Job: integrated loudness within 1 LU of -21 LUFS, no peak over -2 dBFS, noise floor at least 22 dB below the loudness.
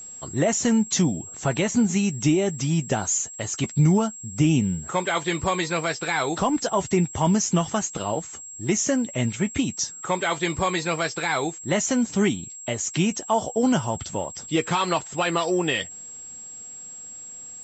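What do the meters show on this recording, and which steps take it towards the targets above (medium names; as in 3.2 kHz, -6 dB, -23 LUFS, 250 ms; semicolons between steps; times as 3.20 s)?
steady tone 7.6 kHz; tone level -37 dBFS; loudness -24.0 LUFS; peak level -9.5 dBFS; loudness target -21.0 LUFS
-> band-stop 7.6 kHz, Q 30; trim +3 dB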